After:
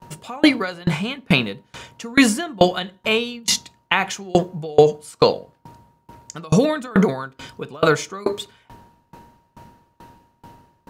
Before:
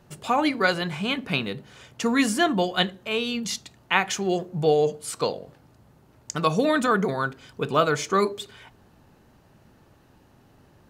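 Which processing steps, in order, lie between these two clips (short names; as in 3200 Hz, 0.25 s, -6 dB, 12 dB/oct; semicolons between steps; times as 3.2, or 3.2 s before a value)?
whine 940 Hz -54 dBFS; gate with hold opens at -47 dBFS; on a send at -18 dB: reverb RT60 0.55 s, pre-delay 3 ms; on the sum: maximiser +14 dB; dB-ramp tremolo decaying 2.3 Hz, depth 29 dB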